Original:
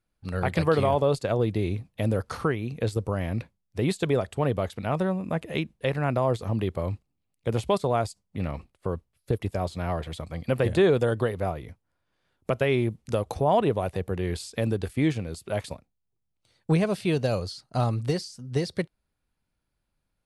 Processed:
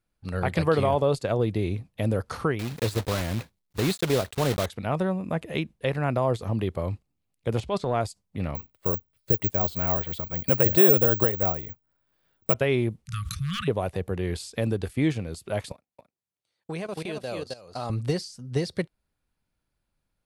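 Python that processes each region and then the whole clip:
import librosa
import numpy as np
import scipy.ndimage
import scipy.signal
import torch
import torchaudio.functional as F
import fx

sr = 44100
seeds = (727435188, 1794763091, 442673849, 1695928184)

y = fx.chain(x, sr, fx.block_float(bits=3),
    fx.peak_eq(hz=4000.0, db=4.5, octaves=0.38), at=(2.59, 4.67))
y = fx.chain(y, sr, fx.lowpass(hz=6100.0, slope=12),
    fx.transient(attack_db=-8, sustain_db=3), at=(7.6, 8.01))
y = fx.chain(y, sr, fx.lowpass(hz=9300.0, slope=12),
    fx.resample_bad(factor=2, down='filtered', up='zero_stuff'), at=(8.55, 12.54))
y = fx.chain(y, sr, fx.clip_hard(threshold_db=-14.0),
    fx.brickwall_bandstop(low_hz=190.0, high_hz=1100.0),
    fx.sustainer(db_per_s=25.0), at=(13.05, 13.68))
y = fx.chain(y, sr, fx.highpass(hz=410.0, slope=6),
    fx.echo_single(ms=265, db=-5.5),
    fx.level_steps(step_db=16), at=(15.72, 17.9))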